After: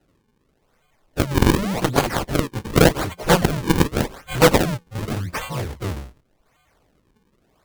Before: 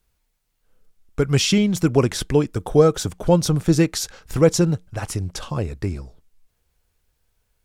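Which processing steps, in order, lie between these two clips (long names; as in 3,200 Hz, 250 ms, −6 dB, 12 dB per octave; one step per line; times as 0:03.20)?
every partial snapped to a pitch grid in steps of 2 semitones
sample-and-hold swept by an LFO 38×, swing 160% 0.87 Hz
harmonic generator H 7 −10 dB, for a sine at −2.5 dBFS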